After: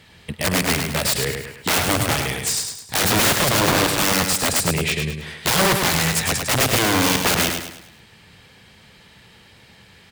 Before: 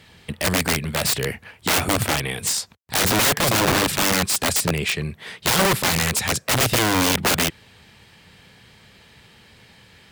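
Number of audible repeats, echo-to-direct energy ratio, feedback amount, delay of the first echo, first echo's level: 4, -4.5 dB, 41%, 104 ms, -5.5 dB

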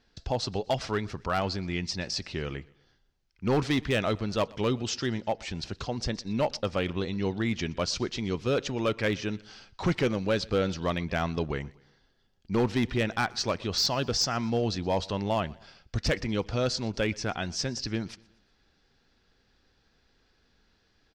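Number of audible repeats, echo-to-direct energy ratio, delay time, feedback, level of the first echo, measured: 2, -23.0 dB, 121 ms, 46%, -24.0 dB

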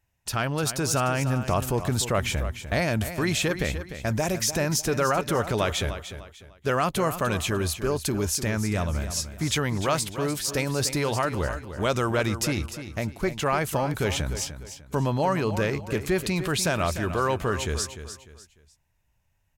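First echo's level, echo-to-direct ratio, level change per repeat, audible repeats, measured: -11.0 dB, -10.5 dB, -10.0 dB, 3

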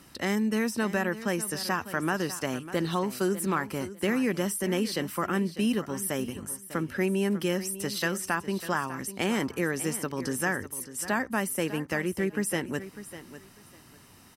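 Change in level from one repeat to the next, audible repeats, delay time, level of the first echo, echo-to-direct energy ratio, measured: -13.5 dB, 2, 599 ms, -14.0 dB, -14.0 dB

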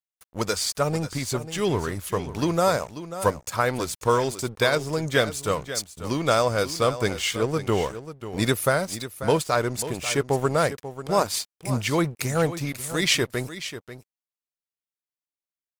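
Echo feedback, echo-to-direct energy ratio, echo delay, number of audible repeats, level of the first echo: no regular repeats, -12.5 dB, 540 ms, 1, -12.5 dB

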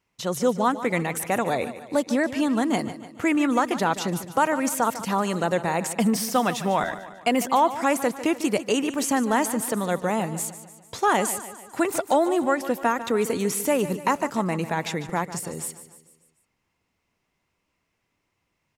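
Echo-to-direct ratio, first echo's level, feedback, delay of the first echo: -12.0 dB, -13.5 dB, 51%, 148 ms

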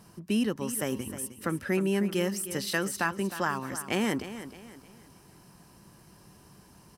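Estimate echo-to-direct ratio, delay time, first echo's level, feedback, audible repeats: -12.0 dB, 310 ms, -12.5 dB, 37%, 3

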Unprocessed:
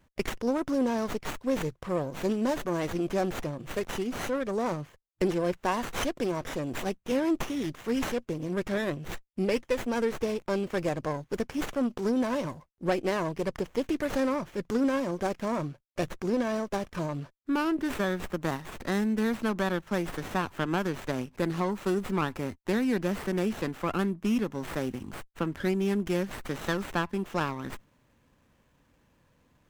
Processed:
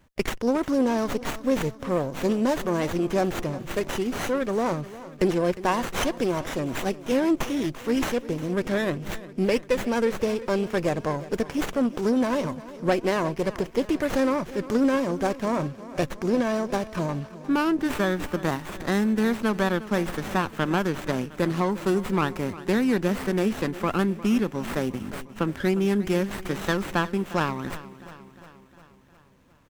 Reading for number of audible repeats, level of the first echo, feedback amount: 5, -16.5 dB, 59%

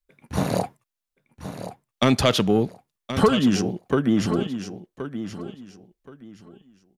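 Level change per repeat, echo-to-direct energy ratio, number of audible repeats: -13.0 dB, -11.0 dB, 2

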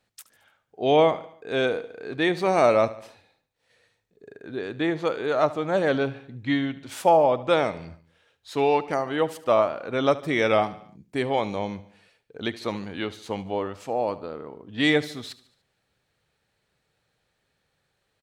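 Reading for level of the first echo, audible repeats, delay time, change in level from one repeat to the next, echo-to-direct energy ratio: -17.5 dB, 4, 73 ms, -5.5 dB, -16.0 dB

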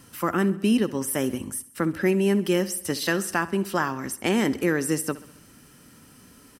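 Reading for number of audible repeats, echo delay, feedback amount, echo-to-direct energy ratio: 4, 66 ms, 55%, -16.0 dB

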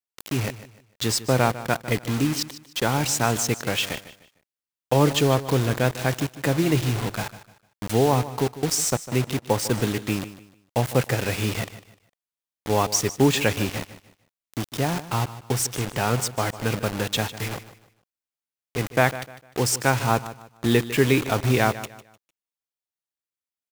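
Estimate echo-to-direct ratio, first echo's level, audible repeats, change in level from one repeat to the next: -14.5 dB, -15.0 dB, 2, -10.0 dB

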